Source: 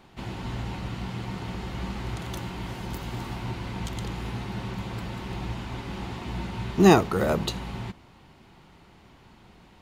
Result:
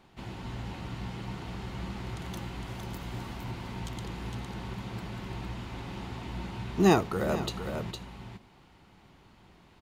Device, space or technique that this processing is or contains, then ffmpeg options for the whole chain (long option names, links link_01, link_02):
ducked delay: -filter_complex "[0:a]asplit=3[link_01][link_02][link_03];[link_02]adelay=459,volume=-4.5dB[link_04];[link_03]apad=whole_len=452978[link_05];[link_04][link_05]sidechaincompress=threshold=-31dB:ratio=8:attack=40:release=390[link_06];[link_01][link_06]amix=inputs=2:normalize=0,volume=-5.5dB"